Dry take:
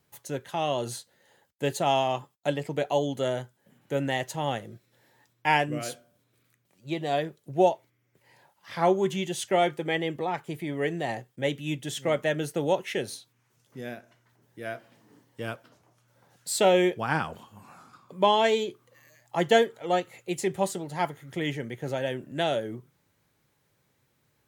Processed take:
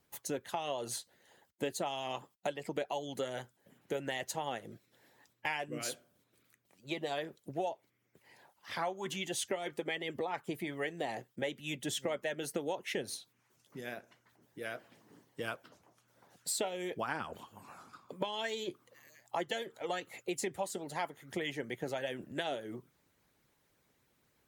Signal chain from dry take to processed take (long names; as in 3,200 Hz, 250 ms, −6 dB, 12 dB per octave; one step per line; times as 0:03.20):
harmonic and percussive parts rebalanced harmonic −13 dB
downward compressor 6 to 1, threshold −35 dBFS, peak gain reduction 14.5 dB
level +2 dB